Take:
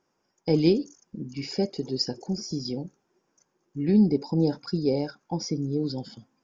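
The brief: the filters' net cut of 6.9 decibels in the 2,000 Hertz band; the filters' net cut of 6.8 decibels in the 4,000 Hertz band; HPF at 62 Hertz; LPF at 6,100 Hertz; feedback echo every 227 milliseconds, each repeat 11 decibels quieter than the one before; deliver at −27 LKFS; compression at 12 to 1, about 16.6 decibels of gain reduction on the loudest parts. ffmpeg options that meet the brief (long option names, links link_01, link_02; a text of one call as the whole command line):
ffmpeg -i in.wav -af "highpass=62,lowpass=6100,equalizer=frequency=2000:width_type=o:gain=-7,equalizer=frequency=4000:width_type=o:gain=-6.5,acompressor=threshold=-32dB:ratio=12,aecho=1:1:227|454|681:0.282|0.0789|0.0221,volume=11.5dB" out.wav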